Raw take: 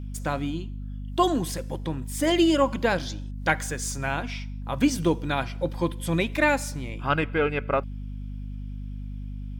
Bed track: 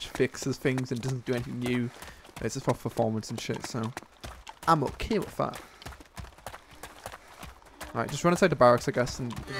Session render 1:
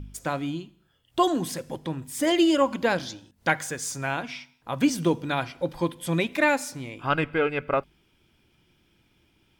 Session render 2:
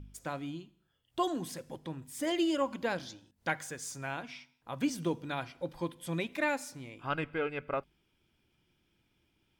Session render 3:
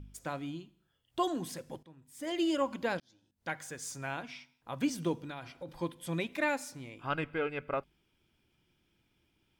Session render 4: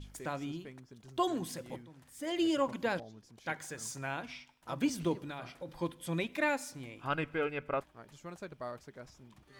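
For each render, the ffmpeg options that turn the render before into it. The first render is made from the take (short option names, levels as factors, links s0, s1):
-af "bandreject=f=50:t=h:w=4,bandreject=f=100:t=h:w=4,bandreject=f=150:t=h:w=4,bandreject=f=200:t=h:w=4,bandreject=f=250:t=h:w=4"
-af "volume=0.335"
-filter_complex "[0:a]asplit=3[s0][s1][s2];[s0]afade=t=out:st=5.19:d=0.02[s3];[s1]acompressor=threshold=0.0126:ratio=6:attack=3.2:release=140:knee=1:detection=peak,afade=t=in:st=5.19:d=0.02,afade=t=out:st=5.67:d=0.02[s4];[s2]afade=t=in:st=5.67:d=0.02[s5];[s3][s4][s5]amix=inputs=3:normalize=0,asplit=3[s6][s7][s8];[s6]atrim=end=1.83,asetpts=PTS-STARTPTS,afade=t=out:st=1.826:d=0.004:c=hsin:silence=0.149624[s9];[s7]atrim=start=1.83:end=3,asetpts=PTS-STARTPTS,afade=t=in:d=0.64:c=qua:silence=0.149624,afade=t=out:st=1.166:d=0.004:c=hsin[s10];[s8]atrim=start=3,asetpts=PTS-STARTPTS,afade=t=in:d=0.87[s11];[s9][s10][s11]concat=n=3:v=0:a=1"
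-filter_complex "[1:a]volume=0.075[s0];[0:a][s0]amix=inputs=2:normalize=0"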